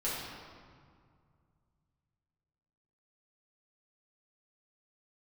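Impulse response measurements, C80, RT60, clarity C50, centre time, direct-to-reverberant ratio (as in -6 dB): 1.0 dB, 2.1 s, -1.0 dB, 0.111 s, -9.0 dB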